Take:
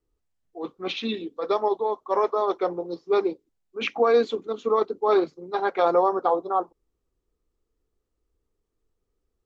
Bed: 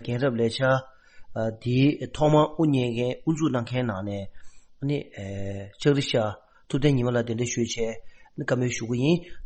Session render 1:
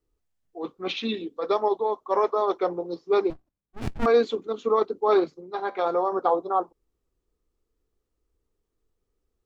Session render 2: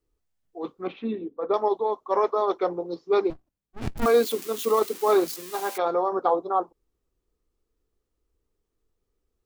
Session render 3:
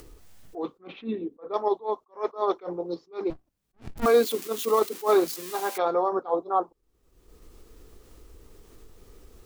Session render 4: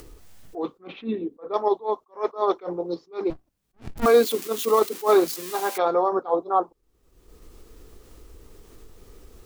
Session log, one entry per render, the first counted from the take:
3.3–4.06 running maximum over 65 samples; 5.41–6.12 resonator 72 Hz, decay 0.43 s, mix 50%
0.87–1.54 LPF 1200 Hz; 3.96–5.78 switching spikes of -25 dBFS
upward compressor, threshold -27 dBFS; attack slew limiter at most 250 dB/s
gain +3 dB

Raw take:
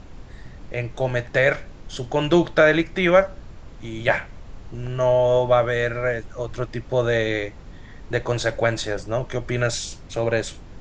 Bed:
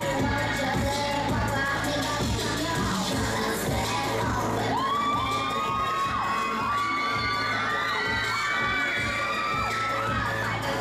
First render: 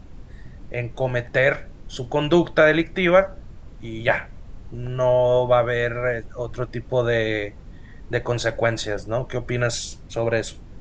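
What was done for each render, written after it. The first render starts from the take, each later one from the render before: denoiser 6 dB, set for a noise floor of -42 dBFS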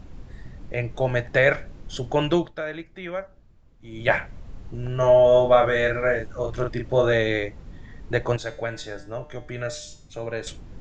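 2.2–4.13 dip -15.5 dB, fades 0.33 s; 4.96–7.13 doubler 37 ms -3.5 dB; 8.36–10.47 resonator 150 Hz, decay 0.49 s, mix 70%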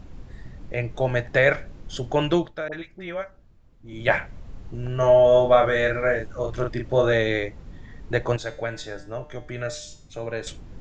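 2.68–3.93 dispersion highs, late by 46 ms, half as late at 810 Hz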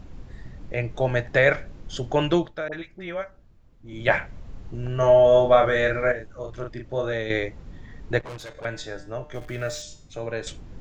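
6.12–7.3 gain -7 dB; 8.19–8.65 tube stage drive 34 dB, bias 0.75; 9.34–9.82 zero-crossing step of -42.5 dBFS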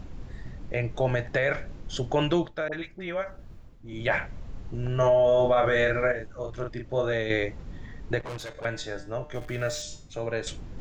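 limiter -14 dBFS, peak gain reduction 9.5 dB; reverse; upward compressor, threshold -33 dBFS; reverse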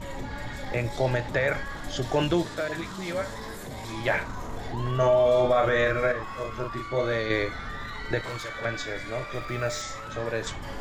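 add bed -11.5 dB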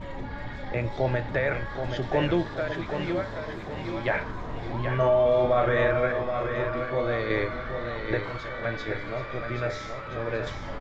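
air absorption 210 m; feedback echo 0.777 s, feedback 47%, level -7 dB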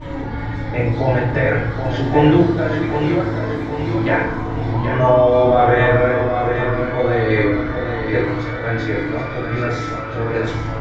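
FDN reverb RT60 0.72 s, low-frequency decay 1.6×, high-frequency decay 0.55×, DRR -8.5 dB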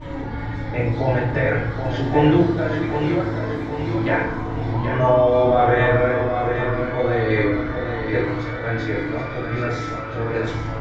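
gain -3 dB

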